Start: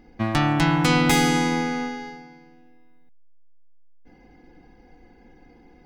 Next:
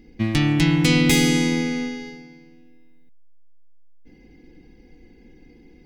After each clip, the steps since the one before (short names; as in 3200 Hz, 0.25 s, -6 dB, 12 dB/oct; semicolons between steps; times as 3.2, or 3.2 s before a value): band shelf 960 Hz -13 dB; gain +3 dB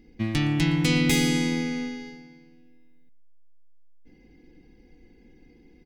outdoor echo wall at 20 m, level -19 dB; gain -5 dB